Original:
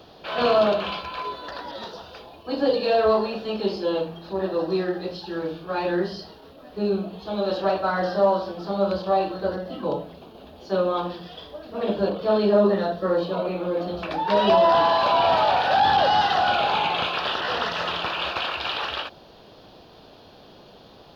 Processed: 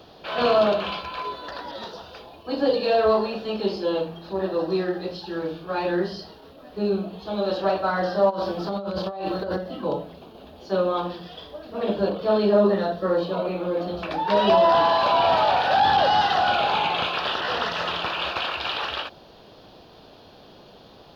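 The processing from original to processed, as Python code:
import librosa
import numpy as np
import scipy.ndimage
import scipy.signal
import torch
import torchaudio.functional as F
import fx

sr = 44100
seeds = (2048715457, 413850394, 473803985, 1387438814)

y = fx.over_compress(x, sr, threshold_db=-29.0, ratio=-1.0, at=(8.29, 9.56), fade=0.02)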